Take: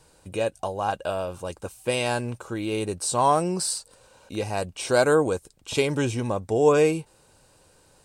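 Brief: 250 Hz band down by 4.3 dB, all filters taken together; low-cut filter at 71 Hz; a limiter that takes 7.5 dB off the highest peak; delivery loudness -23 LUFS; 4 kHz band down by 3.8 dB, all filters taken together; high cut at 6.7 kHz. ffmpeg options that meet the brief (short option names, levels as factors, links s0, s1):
-af "highpass=71,lowpass=6700,equalizer=f=250:t=o:g=-6,equalizer=f=4000:t=o:g=-4.5,volume=2,alimiter=limit=0.316:level=0:latency=1"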